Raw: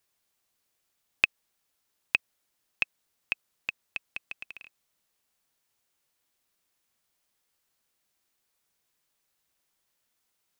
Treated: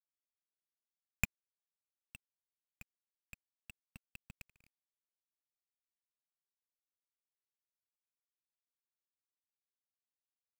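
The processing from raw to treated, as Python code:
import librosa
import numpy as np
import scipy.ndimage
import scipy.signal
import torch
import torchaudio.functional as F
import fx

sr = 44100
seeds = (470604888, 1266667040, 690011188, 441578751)

y = fx.halfwave_hold(x, sr)
y = fx.curve_eq(y, sr, hz=(220.0, 330.0, 580.0), db=(0, -29, -25))
y = fx.quant_dither(y, sr, seeds[0], bits=10, dither='none')
y = fx.vibrato(y, sr, rate_hz=0.58, depth_cents=81.0)
y = fx.level_steps(y, sr, step_db=21)
y = y * librosa.db_to_amplitude(12.0)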